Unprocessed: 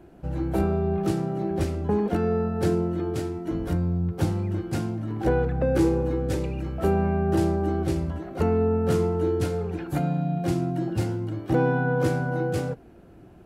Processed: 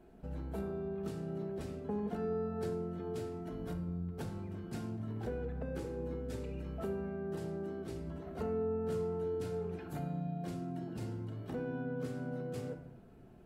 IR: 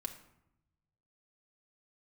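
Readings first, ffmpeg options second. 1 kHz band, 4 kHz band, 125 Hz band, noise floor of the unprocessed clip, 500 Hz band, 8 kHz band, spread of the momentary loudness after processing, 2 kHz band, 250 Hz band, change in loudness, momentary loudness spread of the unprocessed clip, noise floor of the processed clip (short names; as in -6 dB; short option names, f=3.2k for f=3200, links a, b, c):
-16.5 dB, -14.5 dB, -15.5 dB, -49 dBFS, -12.5 dB, -15.0 dB, 6 LU, -17.5 dB, -14.5 dB, -14.0 dB, 7 LU, -55 dBFS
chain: -filter_complex "[0:a]acompressor=threshold=-29dB:ratio=3[a];[1:a]atrim=start_sample=2205[b];[a][b]afir=irnorm=-1:irlink=0,volume=-7dB"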